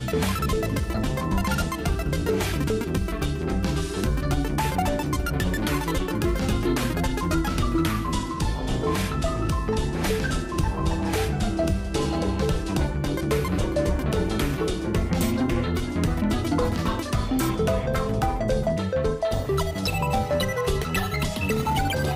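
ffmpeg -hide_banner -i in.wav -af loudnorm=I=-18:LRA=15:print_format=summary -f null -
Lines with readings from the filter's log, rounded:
Input Integrated:    -25.4 LUFS
Input True Peak:     -11.0 dBTP
Input LRA:             1.0 LU
Input Threshold:     -35.4 LUFS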